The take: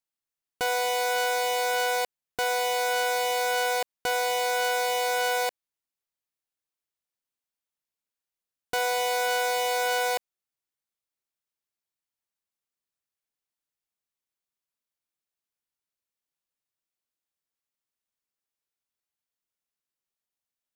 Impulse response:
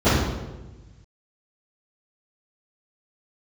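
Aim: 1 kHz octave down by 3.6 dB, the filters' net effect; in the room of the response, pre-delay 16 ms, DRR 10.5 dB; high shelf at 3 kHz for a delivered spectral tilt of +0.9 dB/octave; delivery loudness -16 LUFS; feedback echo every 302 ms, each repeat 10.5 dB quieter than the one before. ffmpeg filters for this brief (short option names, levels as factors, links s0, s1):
-filter_complex "[0:a]equalizer=f=1000:t=o:g=-6.5,highshelf=f=3000:g=8.5,aecho=1:1:302|604|906:0.299|0.0896|0.0269,asplit=2[s0][s1];[1:a]atrim=start_sample=2205,adelay=16[s2];[s1][s2]afir=irnorm=-1:irlink=0,volume=0.0224[s3];[s0][s3]amix=inputs=2:normalize=0,volume=2.37"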